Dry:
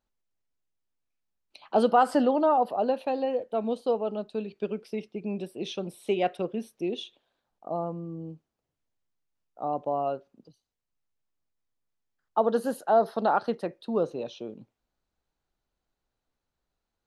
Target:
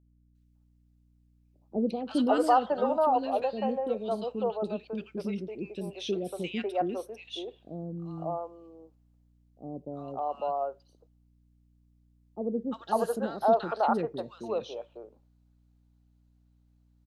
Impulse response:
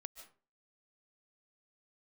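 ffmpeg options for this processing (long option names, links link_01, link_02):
-filter_complex "[0:a]acrossover=split=430|1500[link_01][link_02][link_03];[link_03]adelay=350[link_04];[link_02]adelay=550[link_05];[link_01][link_05][link_04]amix=inputs=3:normalize=0,aeval=exprs='val(0)+0.000708*(sin(2*PI*60*n/s)+sin(2*PI*2*60*n/s)/2+sin(2*PI*3*60*n/s)/3+sin(2*PI*4*60*n/s)/4+sin(2*PI*5*60*n/s)/5)':channel_layout=same"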